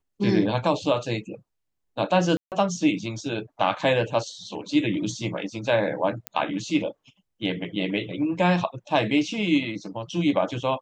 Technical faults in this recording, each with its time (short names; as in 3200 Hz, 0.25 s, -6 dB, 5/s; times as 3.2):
2.37–2.52 gap 0.148 s
6.27 pop -12 dBFS